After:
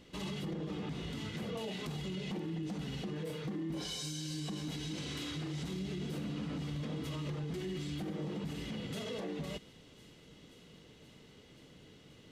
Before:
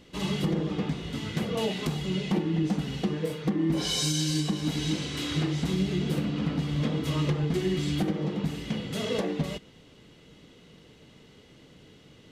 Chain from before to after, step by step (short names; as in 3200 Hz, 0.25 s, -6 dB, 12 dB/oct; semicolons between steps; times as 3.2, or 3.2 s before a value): limiter -28 dBFS, peak gain reduction 10.5 dB; thin delay 0.529 s, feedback 80%, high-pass 4100 Hz, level -16 dB; gain -4 dB